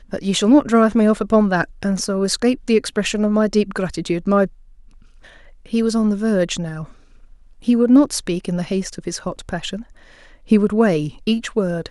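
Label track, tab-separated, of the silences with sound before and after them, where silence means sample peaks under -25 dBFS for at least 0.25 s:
4.460000	5.730000	silence
6.840000	7.680000	silence
9.810000	10.510000	silence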